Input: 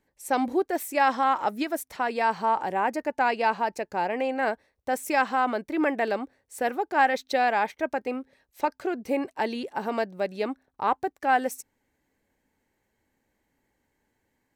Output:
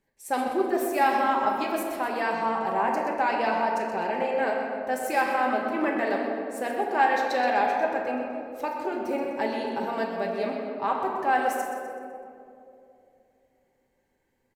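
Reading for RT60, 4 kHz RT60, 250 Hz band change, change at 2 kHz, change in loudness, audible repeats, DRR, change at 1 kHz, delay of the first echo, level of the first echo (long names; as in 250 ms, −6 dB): 2.8 s, 1.2 s, 0.0 dB, 0.0 dB, +0.5 dB, 2, −2.0 dB, +0.5 dB, 126 ms, −10.0 dB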